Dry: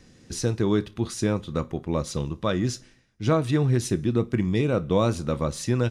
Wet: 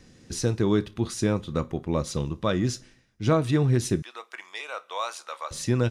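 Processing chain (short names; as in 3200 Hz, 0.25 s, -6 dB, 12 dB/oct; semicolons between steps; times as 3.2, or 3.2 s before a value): 4.02–5.51 HPF 790 Hz 24 dB/oct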